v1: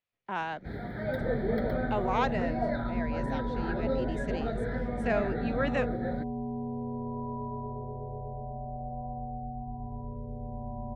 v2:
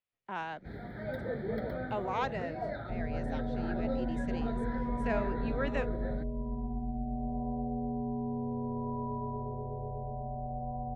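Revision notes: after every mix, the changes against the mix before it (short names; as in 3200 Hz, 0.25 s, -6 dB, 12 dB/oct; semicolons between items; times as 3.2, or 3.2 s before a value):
speech -4.5 dB; first sound -5.5 dB; second sound: entry +1.70 s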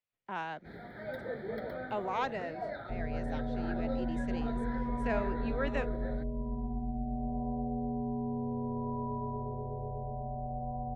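first sound: add low shelf 230 Hz -11.5 dB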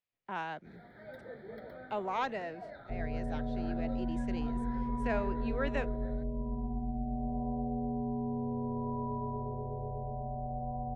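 first sound -8.0 dB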